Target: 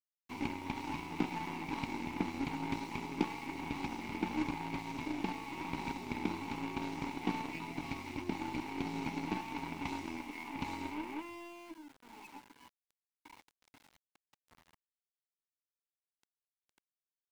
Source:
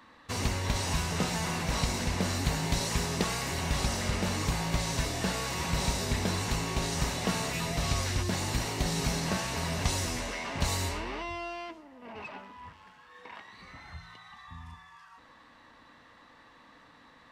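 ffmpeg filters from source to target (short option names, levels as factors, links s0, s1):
-filter_complex "[0:a]asplit=3[s0][s1][s2];[s0]bandpass=f=300:t=q:w=8,volume=1[s3];[s1]bandpass=f=870:t=q:w=8,volume=0.501[s4];[s2]bandpass=f=2240:t=q:w=8,volume=0.355[s5];[s3][s4][s5]amix=inputs=3:normalize=0,aeval=exprs='val(0)*gte(abs(val(0)),0.0015)':c=same,aeval=exprs='0.0398*(cos(1*acos(clip(val(0)/0.0398,-1,1)))-cos(1*PI/2))+0.00316*(cos(7*acos(clip(val(0)/0.0398,-1,1)))-cos(7*PI/2))+0.000891*(cos(8*acos(clip(val(0)/0.0398,-1,1)))-cos(8*PI/2))':c=same,volume=3.16"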